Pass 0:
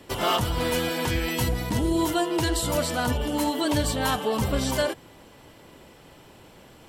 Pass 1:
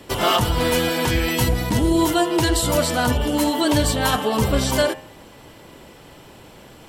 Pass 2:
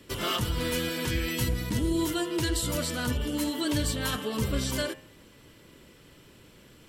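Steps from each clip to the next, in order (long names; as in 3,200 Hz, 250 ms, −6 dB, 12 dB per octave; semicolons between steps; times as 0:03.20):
hum removal 88.5 Hz, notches 34; level +6 dB
parametric band 780 Hz −12.5 dB 0.77 octaves; level −8 dB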